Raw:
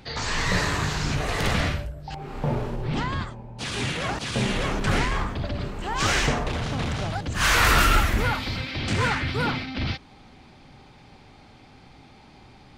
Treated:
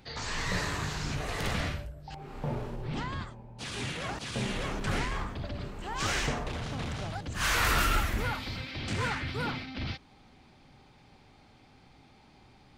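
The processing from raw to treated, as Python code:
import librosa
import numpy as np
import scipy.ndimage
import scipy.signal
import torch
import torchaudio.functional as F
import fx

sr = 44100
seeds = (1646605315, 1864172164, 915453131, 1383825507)

y = fx.high_shelf(x, sr, hz=9200.0, db=3.5)
y = y * librosa.db_to_amplitude(-8.0)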